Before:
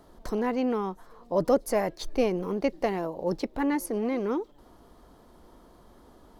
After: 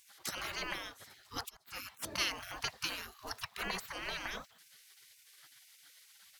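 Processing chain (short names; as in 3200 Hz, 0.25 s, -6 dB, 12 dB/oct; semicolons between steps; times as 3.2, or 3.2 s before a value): 1.32–1.89 auto swell 0.707 s; spectral gate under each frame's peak -30 dB weak; gain +11.5 dB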